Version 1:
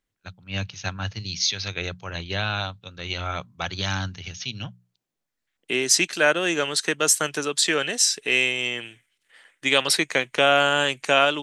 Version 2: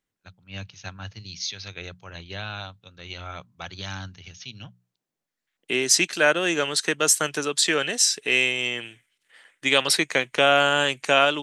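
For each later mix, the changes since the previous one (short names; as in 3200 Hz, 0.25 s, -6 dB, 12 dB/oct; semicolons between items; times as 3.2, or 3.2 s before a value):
first voice -7.5 dB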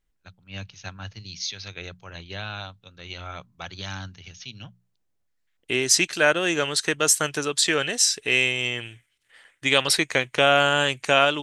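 second voice: remove HPF 150 Hz 24 dB/oct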